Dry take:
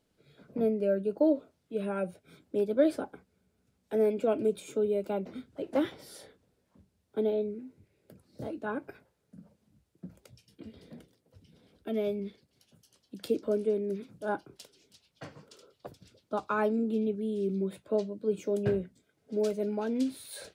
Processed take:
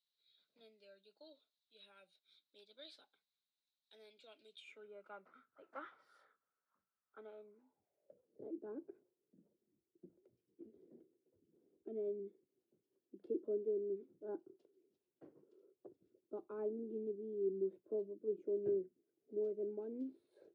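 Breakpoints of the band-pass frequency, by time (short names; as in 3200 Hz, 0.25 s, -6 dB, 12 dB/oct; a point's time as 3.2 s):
band-pass, Q 8
4.52 s 3900 Hz
4.92 s 1300 Hz
7.35 s 1300 Hz
8.52 s 360 Hz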